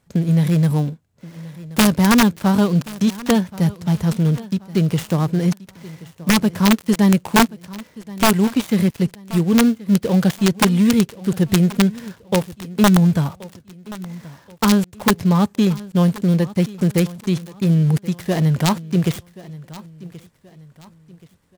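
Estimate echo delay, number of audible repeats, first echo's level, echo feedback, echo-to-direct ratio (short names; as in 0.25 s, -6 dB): 1.078 s, 2, -19.0 dB, 37%, -18.5 dB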